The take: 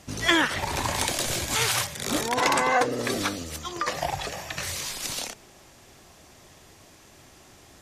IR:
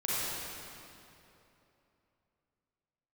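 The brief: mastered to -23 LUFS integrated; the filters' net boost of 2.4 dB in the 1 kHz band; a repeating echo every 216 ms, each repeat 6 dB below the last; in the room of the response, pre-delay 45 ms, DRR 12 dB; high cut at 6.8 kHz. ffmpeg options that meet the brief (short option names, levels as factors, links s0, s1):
-filter_complex "[0:a]lowpass=6800,equalizer=f=1000:t=o:g=3,aecho=1:1:216|432|648|864|1080|1296:0.501|0.251|0.125|0.0626|0.0313|0.0157,asplit=2[s0][s1];[1:a]atrim=start_sample=2205,adelay=45[s2];[s1][s2]afir=irnorm=-1:irlink=0,volume=0.0944[s3];[s0][s3]amix=inputs=2:normalize=0,volume=1.12"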